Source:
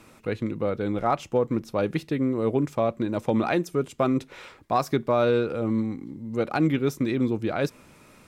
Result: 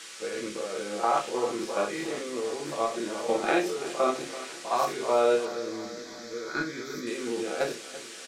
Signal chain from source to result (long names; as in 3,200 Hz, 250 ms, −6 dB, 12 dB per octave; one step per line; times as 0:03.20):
every bin's largest magnitude spread in time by 120 ms
high-pass filter 410 Hz 12 dB per octave
harmonic and percussive parts rebalanced percussive −3 dB
output level in coarse steps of 11 dB
noise in a band 1,200–9,000 Hz −42 dBFS
0:05.45–0:07.07: phaser with its sweep stopped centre 2,800 Hz, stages 6
repeating echo 336 ms, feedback 58%, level −15.5 dB
convolution reverb RT60 0.25 s, pre-delay 5 ms, DRR 0.5 dB
level −4 dB